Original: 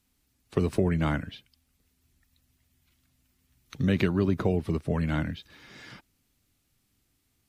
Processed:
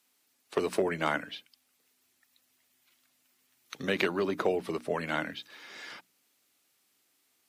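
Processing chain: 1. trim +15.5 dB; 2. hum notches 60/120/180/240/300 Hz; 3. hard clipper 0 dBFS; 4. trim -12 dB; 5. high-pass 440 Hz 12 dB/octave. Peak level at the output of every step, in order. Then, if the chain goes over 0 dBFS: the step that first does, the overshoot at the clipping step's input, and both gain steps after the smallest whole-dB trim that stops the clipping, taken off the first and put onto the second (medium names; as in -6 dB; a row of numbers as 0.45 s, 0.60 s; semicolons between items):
+5.0 dBFS, +4.0 dBFS, 0.0 dBFS, -12.0 dBFS, -12.5 dBFS; step 1, 4.0 dB; step 1 +11.5 dB, step 4 -8 dB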